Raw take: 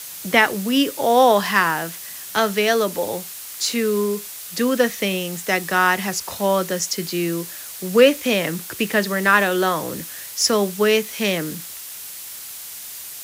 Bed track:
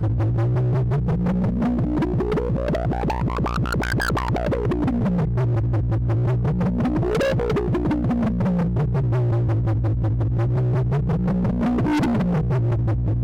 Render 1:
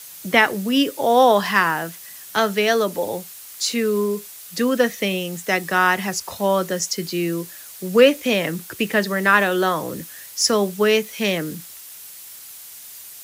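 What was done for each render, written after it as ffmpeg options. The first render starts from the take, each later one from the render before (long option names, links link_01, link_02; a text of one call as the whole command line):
ffmpeg -i in.wav -af "afftdn=noise_reduction=6:noise_floor=-35" out.wav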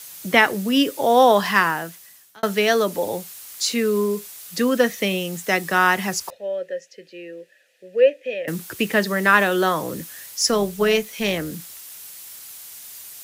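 ffmpeg -i in.wav -filter_complex "[0:a]asettb=1/sr,asplit=3[link_01][link_02][link_03];[link_01]atrim=end=6.304[link_04];[link_02]atrim=start=6.3:end=8.48,asetpts=PTS-STARTPTS,afade=type=in:duration=0.004:curve=qsin,afade=type=out:start_time=2.176:duration=0.004:curve=qsin,asplit=3[link_05][link_06][link_07];[link_05]bandpass=frequency=530:width_type=q:width=8,volume=0dB[link_08];[link_06]bandpass=frequency=1840:width_type=q:width=8,volume=-6dB[link_09];[link_07]bandpass=frequency=2480:width_type=q:width=8,volume=-9dB[link_10];[link_08][link_09][link_10]amix=inputs=3:normalize=0[link_11];[link_03]atrim=start=8.476[link_12];[link_04][link_11]acrossfade=duration=0.004:curve1=hsin:curve2=qsin[link_13];[link_13][link_12]acrossfade=duration=0.004:curve1=qsin:curve2=hsin,asettb=1/sr,asplit=3[link_14][link_15][link_16];[link_14]atrim=end=10.364[link_17];[link_15]atrim=start=10.36:end=11.53,asetpts=PTS-STARTPTS,afade=type=in:duration=0.004:curve=qsin,afade=type=out:start_time=1.166:duration=0.004:curve=qsin,tremolo=f=240:d=0.333[link_18];[link_16]atrim=start=11.526[link_19];[link_17][link_18]acrossfade=duration=0.004:curve1=hsin:curve2=qsin[link_20];[link_20][link_19]acrossfade=duration=0.004:curve1=qsin:curve2=hsin,asplit=2[link_21][link_22];[link_21]atrim=end=2.43,asetpts=PTS-STARTPTS,afade=type=out:start_time=1.59:duration=0.84[link_23];[link_22]atrim=start=2.43,asetpts=PTS-STARTPTS,afade=type=in:duration=0.004:curve=hsin[link_24];[link_23][link_24]concat=n=2:v=0:a=1" out.wav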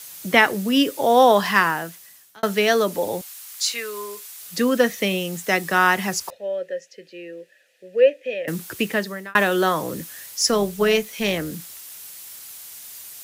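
ffmpeg -i in.wav -filter_complex "[0:a]asettb=1/sr,asplit=3[link_01][link_02][link_03];[link_01]atrim=end=3.214[link_04];[link_02]atrim=start=3.21:end=4.41,asetpts=PTS-STARTPTS,afade=type=in:duration=0.004:curve=qsin,afade=type=out:start_time=1.196:duration=0.004:curve=qsin,highpass=830[link_05];[link_03]atrim=start=4.406[link_06];[link_04][link_05]acrossfade=duration=0.004:curve1=hsin:curve2=qsin[link_07];[link_07][link_06]acrossfade=duration=0.004:curve1=qsin:curve2=hsin,asplit=2[link_08][link_09];[link_08]atrim=end=9.35,asetpts=PTS-STARTPTS,afade=type=out:start_time=8.77:duration=0.58[link_10];[link_09]atrim=start=9.35,asetpts=PTS-STARTPTS,afade=type=in:duration=0.004:curve=hsin[link_11];[link_10][link_11]concat=n=2:v=0:a=1" out.wav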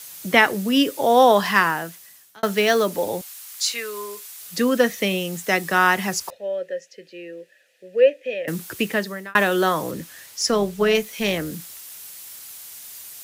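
ffmpeg -i in.wav -filter_complex "[0:a]asettb=1/sr,asplit=3[link_01][link_02][link_03];[link_01]atrim=end=2.444[link_04];[link_02]atrim=start=2.44:end=3.11,asetpts=PTS-STARTPTS,afade=type=in:duration=0.004:curve=qsin,afade=type=out:start_time=0.666:duration=0.004:curve=qsin,acrusher=bits=6:mode=log:mix=0:aa=0.000001[link_05];[link_03]atrim=start=3.106[link_06];[link_04][link_05]acrossfade=duration=0.004:curve1=hsin:curve2=qsin[link_07];[link_07][link_06]acrossfade=duration=0.004:curve1=qsin:curve2=hsin,asettb=1/sr,asplit=3[link_08][link_09][link_10];[link_08]atrim=end=9.914[link_11];[link_09]atrim=start=9.91:end=10.95,asetpts=PTS-STARTPTS,afade=type=in:duration=0.004:curve=qsin,afade=type=out:start_time=1.036:duration=0.004:curve=qsin,highshelf=frequency=7400:gain=-8[link_12];[link_10]atrim=start=10.946[link_13];[link_11][link_12]acrossfade=duration=0.004:curve1=hsin:curve2=qsin[link_14];[link_14][link_13]acrossfade=duration=0.004:curve1=qsin:curve2=hsin" out.wav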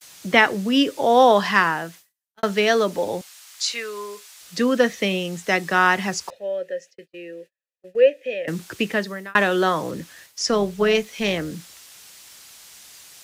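ffmpeg -i in.wav -filter_complex "[0:a]agate=range=-38dB:threshold=-42dB:ratio=16:detection=peak,acrossover=split=7900[link_01][link_02];[link_02]acompressor=threshold=-53dB:ratio=4:attack=1:release=60[link_03];[link_01][link_03]amix=inputs=2:normalize=0" out.wav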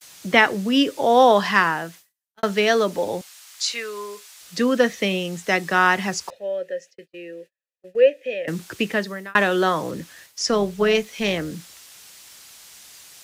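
ffmpeg -i in.wav -af anull out.wav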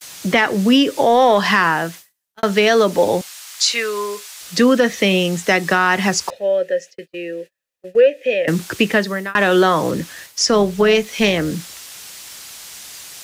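ffmpeg -i in.wav -filter_complex "[0:a]asplit=2[link_01][link_02];[link_02]acontrast=45,volume=0dB[link_03];[link_01][link_03]amix=inputs=2:normalize=0,alimiter=limit=-5dB:level=0:latency=1:release=180" out.wav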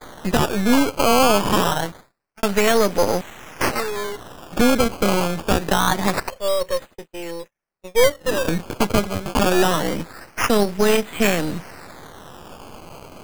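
ffmpeg -i in.wav -af "aeval=exprs='if(lt(val(0),0),0.251*val(0),val(0))':channel_layout=same,acrusher=samples=16:mix=1:aa=0.000001:lfo=1:lforange=16:lforate=0.25" out.wav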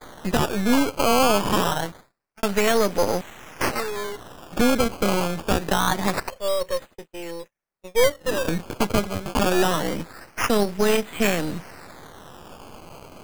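ffmpeg -i in.wav -af "volume=-3dB" out.wav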